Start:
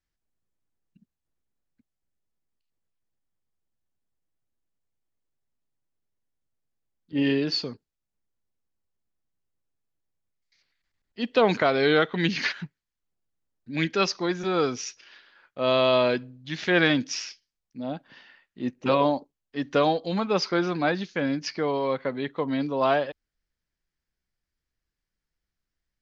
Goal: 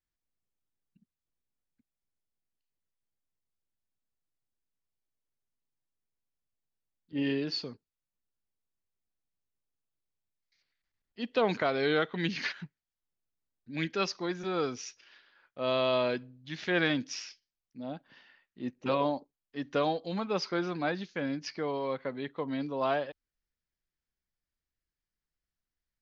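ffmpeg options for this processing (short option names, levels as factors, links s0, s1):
-af "lowpass=8200,volume=0.447"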